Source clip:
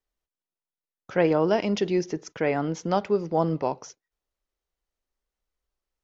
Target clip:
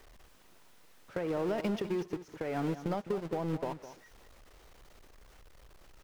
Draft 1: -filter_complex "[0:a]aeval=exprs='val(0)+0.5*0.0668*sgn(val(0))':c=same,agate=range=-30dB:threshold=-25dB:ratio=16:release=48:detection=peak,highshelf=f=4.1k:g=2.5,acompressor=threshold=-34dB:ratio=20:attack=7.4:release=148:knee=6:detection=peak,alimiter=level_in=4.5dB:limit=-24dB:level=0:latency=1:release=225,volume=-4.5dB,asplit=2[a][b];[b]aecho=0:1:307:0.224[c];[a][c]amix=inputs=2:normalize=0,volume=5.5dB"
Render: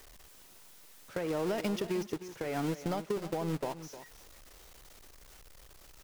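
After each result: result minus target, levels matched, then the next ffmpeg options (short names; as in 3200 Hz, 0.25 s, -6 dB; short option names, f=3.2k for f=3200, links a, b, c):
echo 0.1 s late; 8000 Hz band +9.0 dB
-filter_complex "[0:a]aeval=exprs='val(0)+0.5*0.0668*sgn(val(0))':c=same,agate=range=-30dB:threshold=-25dB:ratio=16:release=48:detection=peak,highshelf=f=4.1k:g=2.5,acompressor=threshold=-34dB:ratio=20:attack=7.4:release=148:knee=6:detection=peak,alimiter=level_in=4.5dB:limit=-24dB:level=0:latency=1:release=225,volume=-4.5dB,asplit=2[a][b];[b]aecho=0:1:207:0.224[c];[a][c]amix=inputs=2:normalize=0,volume=5.5dB"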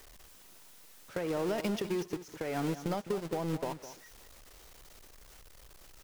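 8000 Hz band +9.0 dB
-filter_complex "[0:a]aeval=exprs='val(0)+0.5*0.0668*sgn(val(0))':c=same,agate=range=-30dB:threshold=-25dB:ratio=16:release=48:detection=peak,highshelf=f=4.1k:g=-9.5,acompressor=threshold=-34dB:ratio=20:attack=7.4:release=148:knee=6:detection=peak,alimiter=level_in=4.5dB:limit=-24dB:level=0:latency=1:release=225,volume=-4.5dB,asplit=2[a][b];[b]aecho=0:1:207:0.224[c];[a][c]amix=inputs=2:normalize=0,volume=5.5dB"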